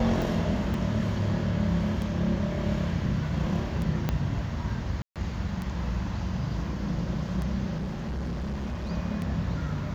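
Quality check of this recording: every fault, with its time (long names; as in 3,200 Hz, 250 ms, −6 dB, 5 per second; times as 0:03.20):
scratch tick 33 1/3 rpm
0:00.74: drop-out 2.4 ms
0:04.09: click −13 dBFS
0:05.02–0:05.16: drop-out 137 ms
0:07.77–0:08.91: clipping −28.5 dBFS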